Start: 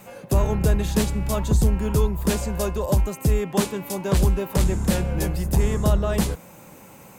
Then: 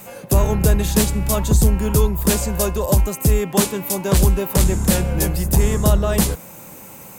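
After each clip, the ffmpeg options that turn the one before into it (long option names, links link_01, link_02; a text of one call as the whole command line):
ffmpeg -i in.wav -af "highshelf=frequency=6600:gain=9.5,volume=4dB" out.wav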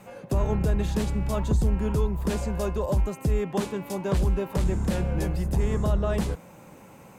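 ffmpeg -i in.wav -af "alimiter=limit=-8.5dB:level=0:latency=1:release=85,aemphasis=mode=reproduction:type=75fm,volume=-6.5dB" out.wav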